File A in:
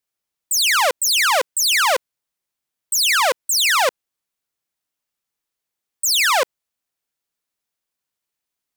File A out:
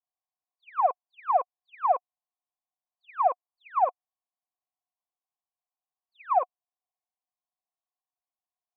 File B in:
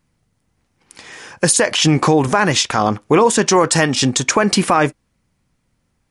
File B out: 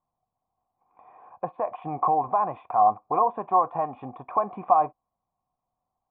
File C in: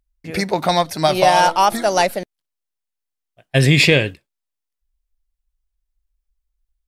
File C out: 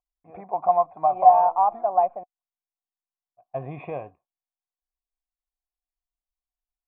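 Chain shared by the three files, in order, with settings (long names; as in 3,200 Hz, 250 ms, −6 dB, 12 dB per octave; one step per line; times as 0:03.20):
formant resonators in series a
high-frequency loss of the air 300 metres
level +4.5 dB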